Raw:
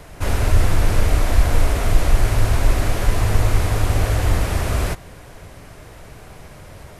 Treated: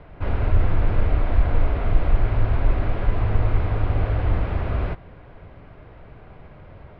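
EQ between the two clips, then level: polynomial smoothing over 15 samples; air absorption 460 m; notch 1800 Hz, Q 23; -3.0 dB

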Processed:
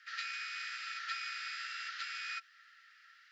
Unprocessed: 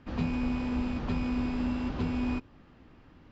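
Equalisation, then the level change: rippled Chebyshev high-pass 1300 Hz, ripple 9 dB; bell 4300 Hz -2 dB; +12.0 dB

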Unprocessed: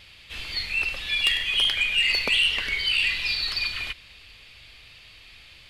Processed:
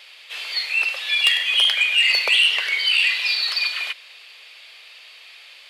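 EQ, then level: HPF 490 Hz 24 dB/oct; +5.0 dB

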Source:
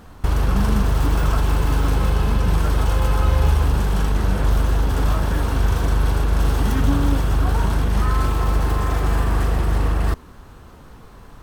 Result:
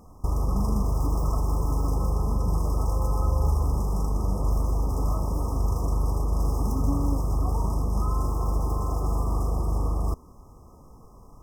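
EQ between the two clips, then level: brick-wall FIR band-stop 1300–4900 Hz; -6.5 dB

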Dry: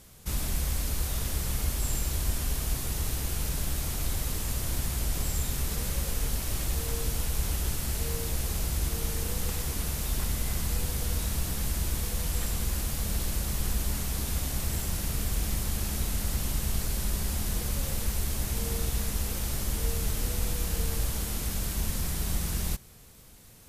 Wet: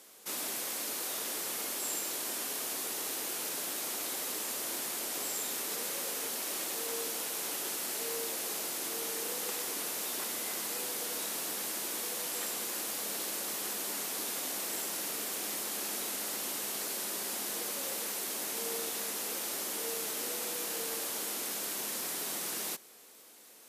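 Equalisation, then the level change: HPF 300 Hz 24 dB/oct; 0.0 dB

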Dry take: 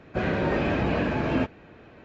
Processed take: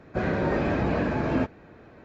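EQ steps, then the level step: bell 2900 Hz -7.5 dB 0.66 oct; 0.0 dB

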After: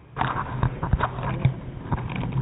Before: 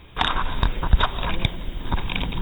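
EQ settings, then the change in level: Gaussian blur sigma 4 samples; HPF 81 Hz 12 dB/oct; bell 130 Hz +14.5 dB 0.26 oct; 0.0 dB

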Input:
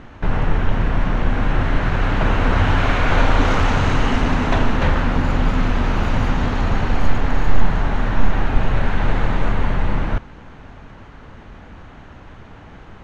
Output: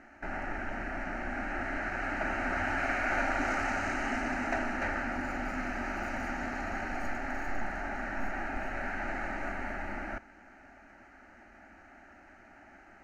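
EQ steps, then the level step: low shelf 99 Hz -11 dB; low shelf 370 Hz -8 dB; fixed phaser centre 700 Hz, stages 8; -6.0 dB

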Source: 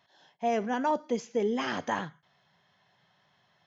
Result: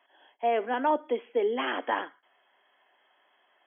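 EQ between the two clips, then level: steep high-pass 270 Hz 48 dB/oct; brick-wall FIR low-pass 3400 Hz; +2.5 dB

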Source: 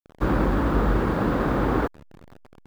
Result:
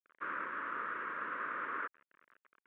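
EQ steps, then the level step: ladder band-pass 1500 Hz, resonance 25%; air absorption 93 m; fixed phaser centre 1900 Hz, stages 4; +6.0 dB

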